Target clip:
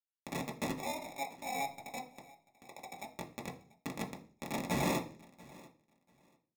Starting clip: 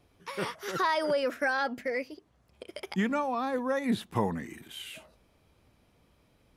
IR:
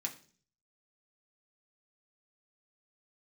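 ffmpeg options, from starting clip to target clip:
-filter_complex "[0:a]equalizer=f=66:t=o:w=1.1:g=-9.5,bandreject=f=50:t=h:w=6,bandreject=f=100:t=h:w=6,bandreject=f=150:t=h:w=6,bandreject=f=200:t=h:w=6,bandreject=f=250:t=h:w=6,bandreject=f=300:t=h:w=6,bandreject=f=350:t=h:w=6,bandreject=f=400:t=h:w=6,acompressor=threshold=0.00891:ratio=12,alimiter=level_in=5.62:limit=0.0631:level=0:latency=1:release=95,volume=0.178,aeval=exprs='val(0)+0.001*(sin(2*PI*50*n/s)+sin(2*PI*2*50*n/s)/2+sin(2*PI*3*50*n/s)/3+sin(2*PI*4*50*n/s)/4+sin(2*PI*5*50*n/s)/5)':c=same,crystalizer=i=7:c=0,acrusher=bits=5:mix=0:aa=0.000001,asettb=1/sr,asplit=3[s0][s1][s2];[s0]atrim=end=0.774[s3];[s1]atrim=start=0.77:end=3.08,asetpts=PTS-STARTPTS,afade=t=in:d=0.004:c=qsin,afade=t=out:st=2.306:d=0.004:c=qsin,lowpass=f=820:t=q:w=4.9[s4];[s2]atrim=start=3.076[s5];[s3][s4]acrossfade=d=0.004:c1=hsin:c2=qsin[s6];[s6][s5]acrossfade=d=0.004:c1=qsin:c2=hsin,acrusher=samples=29:mix=1:aa=0.000001,asoftclip=type=tanh:threshold=0.0422,aecho=1:1:688|1376:0.0794|0.0151[s7];[1:a]atrim=start_sample=2205,afade=t=out:st=0.37:d=0.01,atrim=end_sample=16758[s8];[s7][s8]afir=irnorm=-1:irlink=0,volume=2.11"

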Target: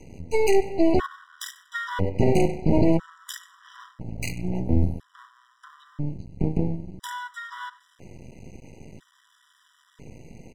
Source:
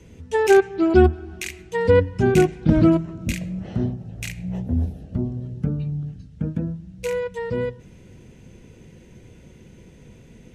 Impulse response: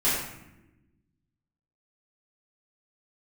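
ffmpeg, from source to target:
-filter_complex "[0:a]asettb=1/sr,asplit=3[s0][s1][s2];[s0]atrim=end=1.634[s3];[s1]atrim=start=1.63:end=2.25,asetpts=PTS-STARTPTS,afade=t=in:d=0.004:c=qsin,afade=t=out:st=0.616:d=0.004:c=qsin,lowpass=5500[s4];[s2]atrim=start=2.246[s5];[s3][s4]acrossfade=d=0.004:c1=hsin:c2=qsin[s6];[s6][s5]acrossfade=d=0.004:c1=qsin:c2=hsin,asplit=2[s7][s8];[s8]aecho=0:1:96|192:0.0944|0.0236[s9];[s7][s9]amix=inputs=2:normalize=0,aeval=exprs='max(val(0),0)':c=same,alimiter=level_in=3.98:limit=0.891:release=50:level=0:latency=1,afftfilt=real='re*gt(sin(2*PI*0.5*pts/sr)*(1-2*mod(floor(b*sr/1024/990),2)),0)':imag='im*gt(sin(2*PI*0.5*pts/sr)*(1-2*mod(floor(b*sr/1024/990),2)),0)':win_size=1024:overlap=0.75,volume=0.473"

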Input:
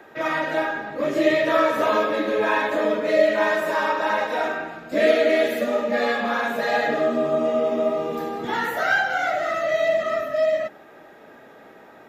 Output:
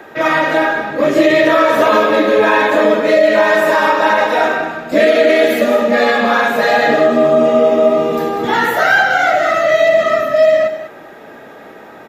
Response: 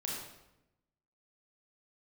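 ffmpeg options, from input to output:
-filter_complex "[0:a]asplit=2[s0][s1];[s1]aecho=0:1:197:0.266[s2];[s0][s2]amix=inputs=2:normalize=0,alimiter=level_in=3.76:limit=0.891:release=50:level=0:latency=1,volume=0.891"

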